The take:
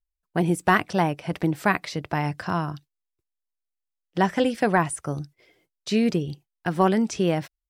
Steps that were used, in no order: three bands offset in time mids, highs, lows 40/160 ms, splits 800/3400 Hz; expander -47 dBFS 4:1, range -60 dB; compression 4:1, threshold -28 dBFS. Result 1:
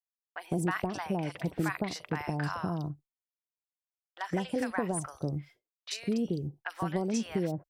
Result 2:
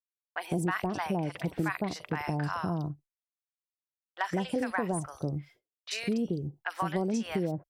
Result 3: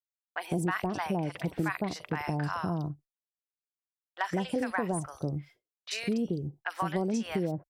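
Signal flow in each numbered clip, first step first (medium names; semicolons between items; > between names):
compression > three bands offset in time > expander; three bands offset in time > expander > compression; three bands offset in time > compression > expander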